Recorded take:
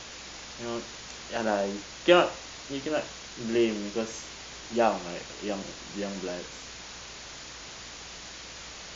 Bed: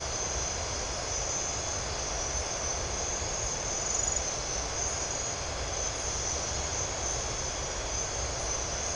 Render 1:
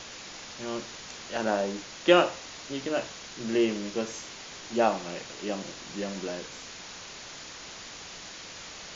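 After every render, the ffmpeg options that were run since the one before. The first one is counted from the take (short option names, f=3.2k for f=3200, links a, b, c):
-af "bandreject=f=60:t=h:w=4,bandreject=f=120:t=h:w=4"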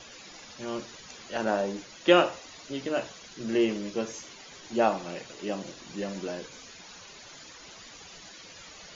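-af "afftdn=nr=12:nf=-44"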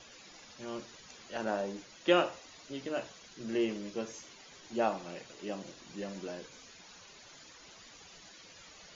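-af "volume=-6.5dB"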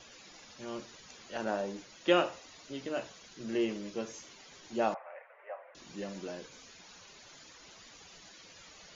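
-filter_complex "[0:a]asettb=1/sr,asplit=3[a][b][c];[a]atrim=end=4.944[d];[b]atrim=start=4.94:end=5.75,asetpts=PTS-STARTPTS,afade=t=in:d=0.004:c=qsin,afade=t=out:st=0.806:d=0.004:c=qsin,asuperpass=centerf=1100:order=12:qfactor=0.64[e];[c]atrim=start=5.746[f];[d][e]acrossfade=d=0.004:c1=hsin:c2=qsin[g];[g][f]acrossfade=d=0.004:c1=qsin:c2=hsin"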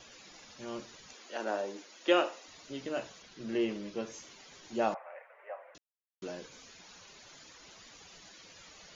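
-filter_complex "[0:a]asettb=1/sr,asplit=3[a][b][c];[a]atrim=end=1.134[d];[b]atrim=start=1.13:end=2.48,asetpts=PTS-STARTPTS,afade=t=in:d=0.004:c=qsin,afade=t=out:st=1.346:d=0.004:c=qsin,highpass=f=260:w=0.5412,highpass=f=260:w=1.3066[e];[c]atrim=start=2.476[f];[d][e]acrossfade=d=0.004:c1=hsin:c2=qsin[g];[g][f]acrossfade=d=0.004:c1=qsin:c2=hsin,asettb=1/sr,asplit=3[h][i][j];[h]atrim=end=3.224[k];[i]atrim=start=3.22:end=4.12,asetpts=PTS-STARTPTS,afade=t=in:d=0.004:c=qsin,afade=t=out:st=0.896:d=0.004:c=qsin,lowpass=5.5k[l];[j]atrim=start=4.116[m];[k][l]acrossfade=d=0.004:c1=hsin:c2=qsin[n];[n][m]acrossfade=d=0.004:c1=qsin:c2=hsin,asplit=3[o][p][q];[o]atrim=end=5.78,asetpts=PTS-STARTPTS,afade=t=out:st=5.776:d=0.004:c=hsin[r];[p]atrim=start=5.78:end=6.22,asetpts=PTS-STARTPTS,volume=0[s];[q]atrim=start=6.22,asetpts=PTS-STARTPTS,afade=t=in:d=0.004:c=hsin[t];[r][s][t]concat=n=3:v=0:a=1"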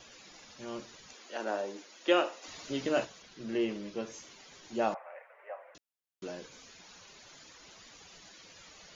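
-filter_complex "[0:a]asplit=3[a][b][c];[a]afade=t=out:st=2.42:d=0.02[d];[b]acontrast=65,afade=t=in:st=2.42:d=0.02,afade=t=out:st=3.04:d=0.02[e];[c]afade=t=in:st=3.04:d=0.02[f];[d][e][f]amix=inputs=3:normalize=0"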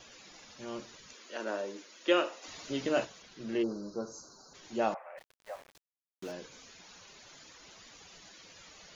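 -filter_complex "[0:a]asettb=1/sr,asplit=3[a][b][c];[a]atrim=end=0.984[d];[b]atrim=start=0.98:end=2.31,asetpts=PTS-STARTPTS,afade=t=in:d=0.004:c=qsin,afade=t=out:st=1.326:d=0.004:c=qsin,equalizer=f=770:t=o:w=0.26:g=-10[e];[c]atrim=start=2.306[f];[d][e]acrossfade=d=0.004:c1=hsin:c2=qsin[g];[g][f]acrossfade=d=0.004:c1=qsin:c2=hsin,asplit=3[h][i][j];[h]afade=t=out:st=3.62:d=0.02[k];[i]asuperstop=centerf=2500:order=20:qfactor=1,afade=t=in:st=3.62:d=0.02,afade=t=out:st=4.53:d=0.02[l];[j]afade=t=in:st=4.53:d=0.02[m];[k][l][m]amix=inputs=3:normalize=0,asplit=3[n][o][p];[n]afade=t=out:st=5.17:d=0.02[q];[o]aeval=exprs='val(0)*gte(abs(val(0)),0.00355)':c=same,afade=t=in:st=5.17:d=0.02,afade=t=out:st=6.31:d=0.02[r];[p]afade=t=in:st=6.31:d=0.02[s];[q][r][s]amix=inputs=3:normalize=0"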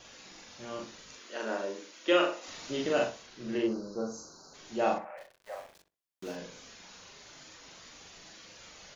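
-filter_complex "[0:a]asplit=2[a][b];[b]adelay=41,volume=-2dB[c];[a][c]amix=inputs=2:normalize=0,asplit=2[d][e];[e]adelay=63,lowpass=f=1.7k:p=1,volume=-9dB,asplit=2[f][g];[g]adelay=63,lowpass=f=1.7k:p=1,volume=0.2,asplit=2[h][i];[i]adelay=63,lowpass=f=1.7k:p=1,volume=0.2[j];[f][h][j]amix=inputs=3:normalize=0[k];[d][k]amix=inputs=2:normalize=0"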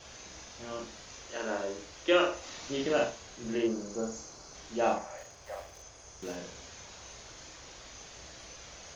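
-filter_complex "[1:a]volume=-19dB[a];[0:a][a]amix=inputs=2:normalize=0"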